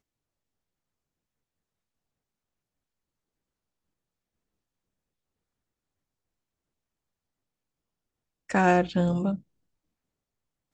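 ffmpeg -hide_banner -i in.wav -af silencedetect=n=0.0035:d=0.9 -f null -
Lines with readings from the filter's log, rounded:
silence_start: 0.00
silence_end: 8.49 | silence_duration: 8.49
silence_start: 9.41
silence_end: 10.73 | silence_duration: 1.33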